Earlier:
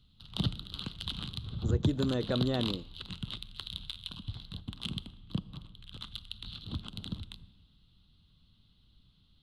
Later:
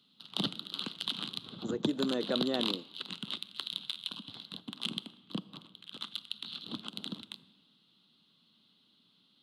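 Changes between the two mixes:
background +3.5 dB; master: add HPF 220 Hz 24 dB/oct

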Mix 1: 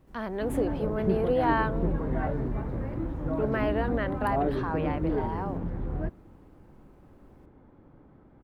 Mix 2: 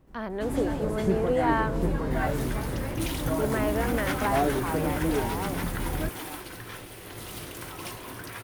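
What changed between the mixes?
first sound: remove tape spacing loss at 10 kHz 44 dB; second sound: unmuted

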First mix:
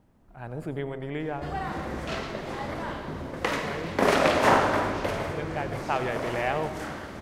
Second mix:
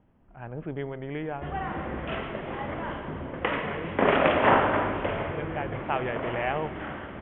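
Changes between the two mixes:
speech: send -8.0 dB; master: add steep low-pass 3300 Hz 96 dB/oct

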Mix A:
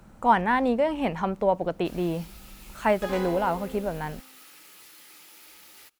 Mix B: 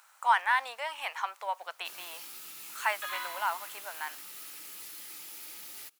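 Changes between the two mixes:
speech: add HPF 1000 Hz 24 dB/oct; second sound: add brick-wall FIR band-pass 940–4400 Hz; master: add high shelf 4900 Hz +7.5 dB

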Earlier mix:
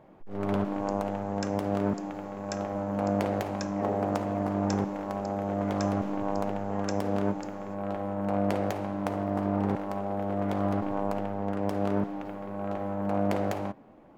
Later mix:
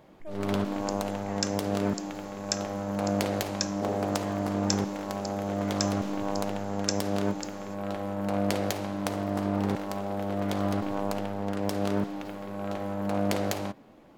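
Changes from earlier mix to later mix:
speech: entry -2.50 s; master: add EQ curve 490 Hz 0 dB, 780 Hz -2 dB, 2500 Hz +5 dB, 4000 Hz +12 dB

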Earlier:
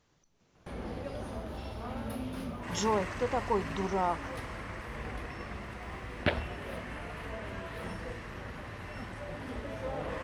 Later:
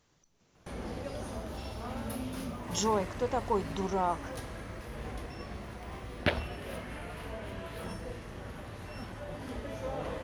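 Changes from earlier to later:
first sound: add bell 6400 Hz +5 dB 0.72 oct; second sound -8.5 dB; master: add high shelf 7000 Hz +7.5 dB

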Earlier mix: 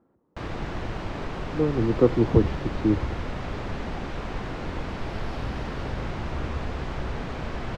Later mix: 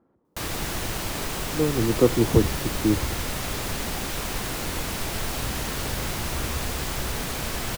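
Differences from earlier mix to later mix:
first sound: add high shelf 2700 Hz +12 dB; master: remove air absorption 150 m

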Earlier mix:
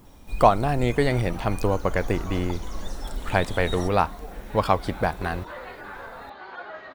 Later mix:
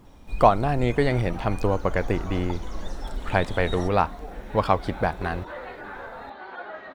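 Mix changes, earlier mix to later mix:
second sound: send on; master: add high shelf 7500 Hz -12 dB

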